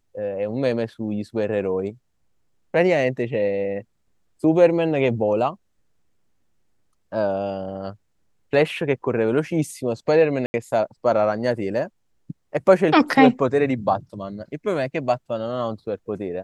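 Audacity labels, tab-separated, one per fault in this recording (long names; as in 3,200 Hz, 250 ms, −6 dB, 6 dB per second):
10.460000	10.540000	drop-out 80 ms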